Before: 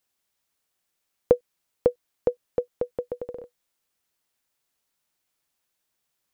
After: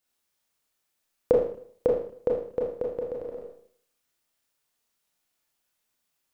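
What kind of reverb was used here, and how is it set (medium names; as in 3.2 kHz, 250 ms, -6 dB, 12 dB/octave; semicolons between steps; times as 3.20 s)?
Schroeder reverb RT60 0.57 s, combs from 26 ms, DRR -2 dB; trim -3.5 dB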